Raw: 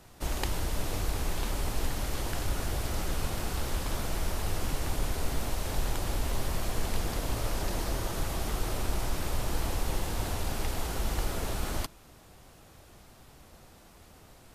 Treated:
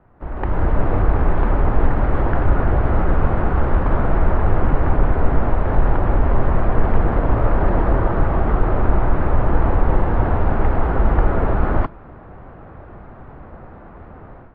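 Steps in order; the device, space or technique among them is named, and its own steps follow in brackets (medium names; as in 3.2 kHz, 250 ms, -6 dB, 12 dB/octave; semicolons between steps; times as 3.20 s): action camera in a waterproof case (low-pass 1.6 kHz 24 dB/octave; level rider gain up to 15.5 dB; trim +1 dB; AAC 64 kbps 32 kHz)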